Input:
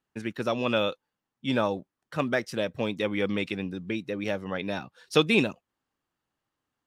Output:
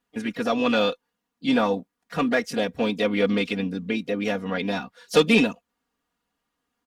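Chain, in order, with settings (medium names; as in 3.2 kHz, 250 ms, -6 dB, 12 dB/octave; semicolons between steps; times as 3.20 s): Chebyshev shaper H 5 -19 dB, 6 -39 dB, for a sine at -7 dBFS; harmony voices +3 st -15 dB, +5 st -17 dB; comb 4.2 ms, depth 77%; trim -1 dB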